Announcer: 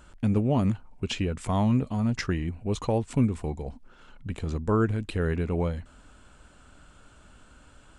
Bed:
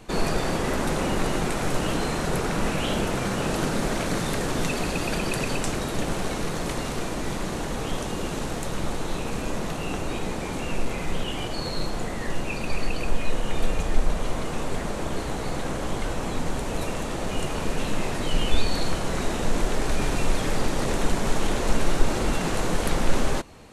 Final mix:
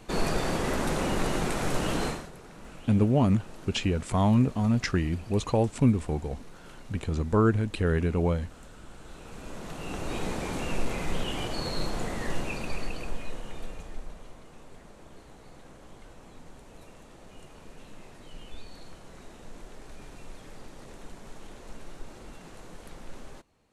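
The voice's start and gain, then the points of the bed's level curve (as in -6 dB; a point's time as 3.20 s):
2.65 s, +1.5 dB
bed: 2.08 s -3 dB
2.32 s -22 dB
8.87 s -22 dB
10.20 s -2.5 dB
12.35 s -2.5 dB
14.41 s -21.5 dB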